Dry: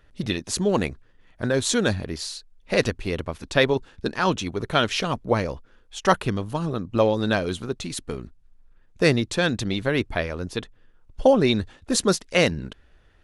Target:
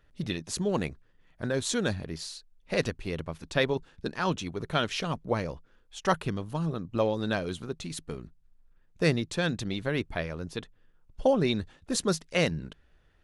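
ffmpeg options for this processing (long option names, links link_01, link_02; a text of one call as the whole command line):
ffmpeg -i in.wav -af "equalizer=frequency=160:width=7.6:gain=7.5,volume=-7dB" out.wav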